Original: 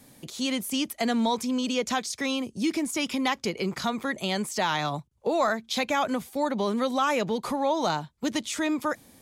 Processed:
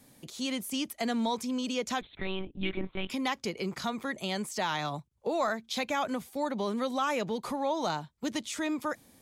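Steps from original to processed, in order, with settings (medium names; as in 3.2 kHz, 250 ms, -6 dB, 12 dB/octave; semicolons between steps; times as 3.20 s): 2.01–3.10 s: monotone LPC vocoder at 8 kHz 190 Hz; trim -5 dB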